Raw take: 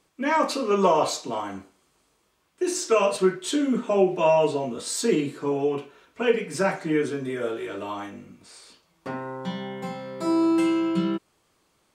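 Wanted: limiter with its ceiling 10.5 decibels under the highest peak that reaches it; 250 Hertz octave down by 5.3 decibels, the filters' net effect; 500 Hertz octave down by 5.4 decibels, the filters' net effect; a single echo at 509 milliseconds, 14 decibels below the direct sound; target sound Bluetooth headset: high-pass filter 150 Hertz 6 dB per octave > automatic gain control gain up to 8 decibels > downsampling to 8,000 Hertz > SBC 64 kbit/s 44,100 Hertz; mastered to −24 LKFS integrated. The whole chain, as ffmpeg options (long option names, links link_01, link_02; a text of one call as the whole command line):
ffmpeg -i in.wav -af "equalizer=frequency=250:width_type=o:gain=-3.5,equalizer=frequency=500:width_type=o:gain=-5.5,alimiter=limit=-20.5dB:level=0:latency=1,highpass=frequency=150:poles=1,aecho=1:1:509:0.2,dynaudnorm=maxgain=8dB,aresample=8000,aresample=44100,volume=8dB" -ar 44100 -c:a sbc -b:a 64k out.sbc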